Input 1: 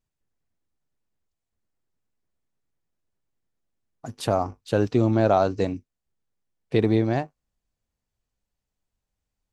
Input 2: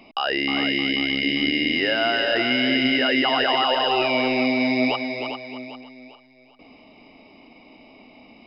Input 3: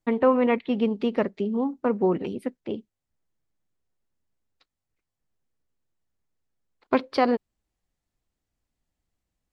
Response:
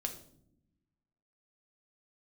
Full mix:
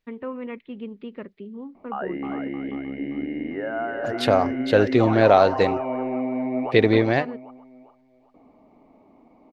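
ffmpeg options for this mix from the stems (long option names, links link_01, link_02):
-filter_complex "[0:a]equalizer=frequency=500:width_type=o:width=1:gain=7,equalizer=frequency=2000:width_type=o:width=1:gain=12,equalizer=frequency=4000:width_type=o:width=1:gain=8,equalizer=frequency=8000:width_type=o:width=1:gain=-6,volume=-1dB[link_01];[1:a]lowpass=frequency=1400:width=0.5412,lowpass=frequency=1400:width=1.3066,adelay=1750,volume=-4dB[link_02];[2:a]lowpass=frequency=3500:width=0.5412,lowpass=frequency=3500:width=1.3066,equalizer=frequency=750:width_type=o:width=0.79:gain=-9,volume=-10.5dB[link_03];[link_01][link_02][link_03]amix=inputs=3:normalize=0"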